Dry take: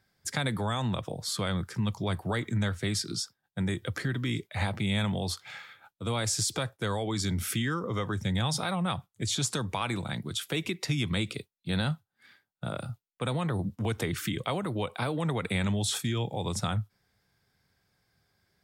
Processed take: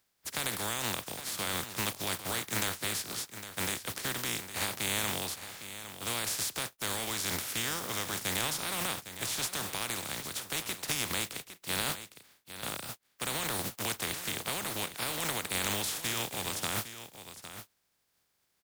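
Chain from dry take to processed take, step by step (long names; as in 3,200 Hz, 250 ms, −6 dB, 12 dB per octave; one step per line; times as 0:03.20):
compressing power law on the bin magnitudes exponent 0.24
single-tap delay 808 ms −12 dB
level −4 dB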